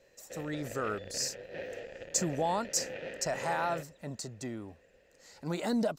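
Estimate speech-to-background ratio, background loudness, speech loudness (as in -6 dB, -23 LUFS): 8.0 dB, -43.0 LUFS, -35.0 LUFS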